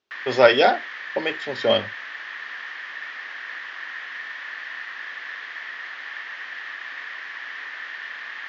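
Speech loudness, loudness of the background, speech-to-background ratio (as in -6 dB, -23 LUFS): -20.5 LUFS, -33.0 LUFS, 12.5 dB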